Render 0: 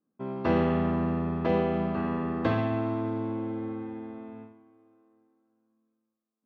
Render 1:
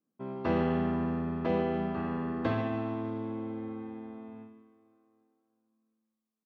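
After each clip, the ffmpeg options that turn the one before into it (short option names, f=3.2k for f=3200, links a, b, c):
-af "aecho=1:1:150|300|450|600:0.237|0.0925|0.0361|0.0141,volume=-4dB"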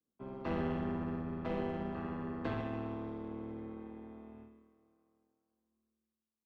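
-filter_complex "[0:a]tremolo=f=150:d=0.667,acrossover=split=110|410|850[a][b][c][d];[c]aeval=exprs='clip(val(0),-1,0.00531)':c=same[e];[a][b][e][d]amix=inputs=4:normalize=0,volume=-3.5dB"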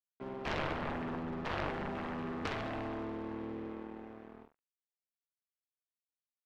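-af "aeval=exprs='sgn(val(0))*max(abs(val(0))-0.002,0)':c=same,bass=f=250:g=-5,treble=f=4k:g=-11,aeval=exprs='0.0596*(cos(1*acos(clip(val(0)/0.0596,-1,1)))-cos(1*PI/2))+0.0299*(cos(7*acos(clip(val(0)/0.0596,-1,1)))-cos(7*PI/2))':c=same"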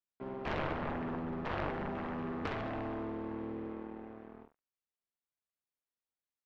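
-af "lowpass=f=2.1k:p=1,volume=1dB"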